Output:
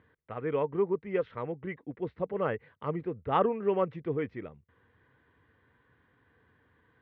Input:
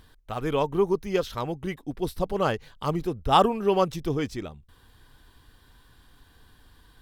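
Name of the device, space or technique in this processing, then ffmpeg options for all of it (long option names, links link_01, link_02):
bass cabinet: -af "highpass=frequency=86:width=0.5412,highpass=frequency=86:width=1.3066,equalizer=frequency=480:width_type=q:width=4:gain=7,equalizer=frequency=780:width_type=q:width=4:gain=-4,equalizer=frequency=2000:width_type=q:width=4:gain=7,lowpass=frequency=2300:width=0.5412,lowpass=frequency=2300:width=1.3066,volume=-7dB"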